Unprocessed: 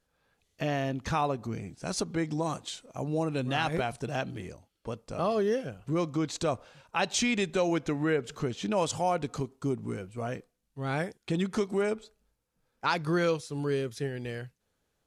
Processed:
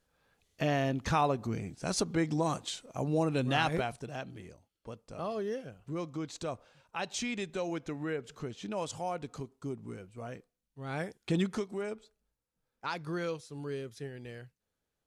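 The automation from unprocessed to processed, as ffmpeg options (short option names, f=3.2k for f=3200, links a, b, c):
-af "volume=9dB,afade=t=out:st=3.6:d=0.48:silence=0.375837,afade=t=in:st=10.86:d=0.52:silence=0.375837,afade=t=out:st=11.38:d=0.27:silence=0.354813"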